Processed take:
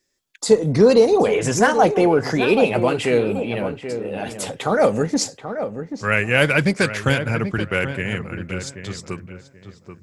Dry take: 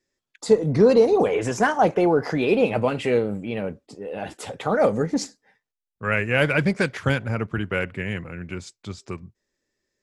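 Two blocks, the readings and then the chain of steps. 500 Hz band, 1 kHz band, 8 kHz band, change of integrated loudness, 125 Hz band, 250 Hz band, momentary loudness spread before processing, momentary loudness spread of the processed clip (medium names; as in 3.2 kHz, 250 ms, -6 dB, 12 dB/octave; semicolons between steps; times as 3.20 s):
+3.0 dB, +3.5 dB, +9.5 dB, +2.5 dB, +3.0 dB, +3.0 dB, 18 LU, 14 LU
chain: treble shelf 3.7 kHz +9 dB; on a send: filtered feedback delay 783 ms, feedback 26%, low-pass 1.7 kHz, level -9 dB; on the sum: trim +2.5 dB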